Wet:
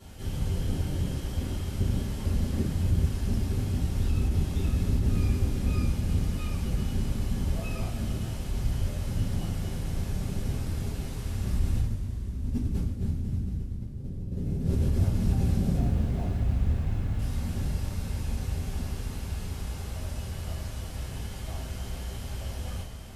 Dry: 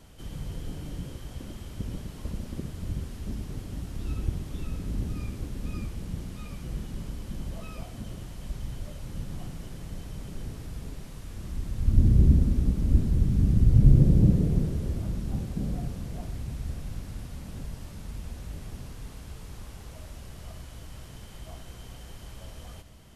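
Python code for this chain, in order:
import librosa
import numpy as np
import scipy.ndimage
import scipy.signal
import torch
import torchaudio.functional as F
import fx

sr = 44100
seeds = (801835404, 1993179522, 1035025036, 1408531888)

y = fx.median_filter(x, sr, points=9, at=(15.76, 17.19))
y = fx.over_compress(y, sr, threshold_db=-30.0, ratio=-1.0)
y = fx.rev_double_slope(y, sr, seeds[0], early_s=0.33, late_s=4.8, knee_db=-18, drr_db=-9.0)
y = y * librosa.db_to_amplitude(-7.5)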